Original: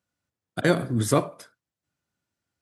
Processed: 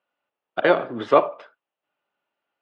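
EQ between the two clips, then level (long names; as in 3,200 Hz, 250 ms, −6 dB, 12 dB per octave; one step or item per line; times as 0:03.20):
loudspeaker in its box 370–3,300 Hz, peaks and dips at 420 Hz +4 dB, 600 Hz +7 dB, 850 Hz +8 dB, 1,200 Hz +6 dB, 2,800 Hz +8 dB
+2.0 dB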